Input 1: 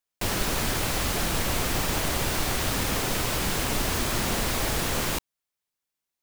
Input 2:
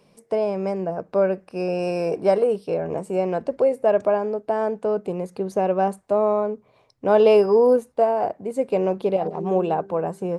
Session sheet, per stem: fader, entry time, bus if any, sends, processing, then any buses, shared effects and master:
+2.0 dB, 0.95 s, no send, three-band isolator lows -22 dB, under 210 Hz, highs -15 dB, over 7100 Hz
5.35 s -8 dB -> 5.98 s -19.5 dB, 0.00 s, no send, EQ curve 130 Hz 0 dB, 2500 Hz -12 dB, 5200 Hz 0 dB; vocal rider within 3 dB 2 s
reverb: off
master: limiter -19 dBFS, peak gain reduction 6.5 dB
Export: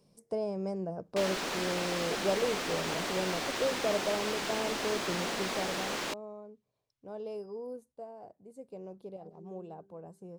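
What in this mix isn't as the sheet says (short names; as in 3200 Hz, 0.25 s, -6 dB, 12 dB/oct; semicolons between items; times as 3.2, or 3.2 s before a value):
stem 1 +2.0 dB -> -5.0 dB; master: missing limiter -19 dBFS, peak gain reduction 6.5 dB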